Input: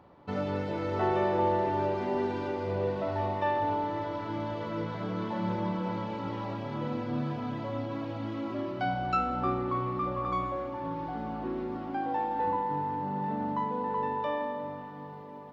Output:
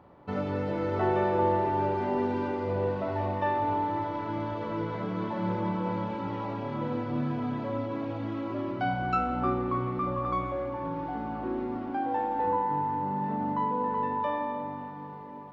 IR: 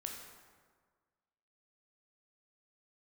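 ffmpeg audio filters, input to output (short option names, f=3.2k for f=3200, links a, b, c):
-filter_complex "[0:a]asplit=2[a][b];[1:a]atrim=start_sample=2205,lowpass=3.1k[c];[b][c]afir=irnorm=-1:irlink=0,volume=0.5dB[d];[a][d]amix=inputs=2:normalize=0,volume=-3dB"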